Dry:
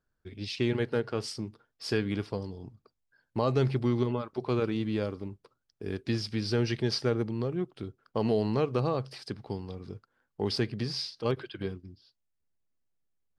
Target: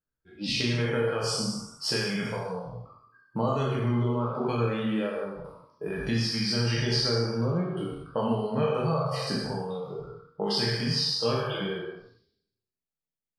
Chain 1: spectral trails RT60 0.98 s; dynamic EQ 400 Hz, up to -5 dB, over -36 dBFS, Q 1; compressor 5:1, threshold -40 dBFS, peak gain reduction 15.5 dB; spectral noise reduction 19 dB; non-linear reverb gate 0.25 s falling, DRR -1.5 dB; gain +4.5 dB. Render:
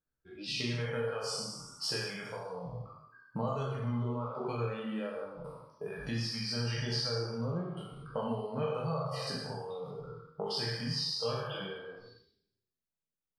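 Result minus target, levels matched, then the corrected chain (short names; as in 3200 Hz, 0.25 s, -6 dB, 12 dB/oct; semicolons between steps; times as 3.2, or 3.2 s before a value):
compressor: peak gain reduction +7 dB
spectral trails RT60 0.98 s; dynamic EQ 400 Hz, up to -5 dB, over -36 dBFS, Q 1; compressor 5:1, threshold -31 dBFS, peak gain reduction 8.5 dB; spectral noise reduction 19 dB; non-linear reverb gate 0.25 s falling, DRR -1.5 dB; gain +4.5 dB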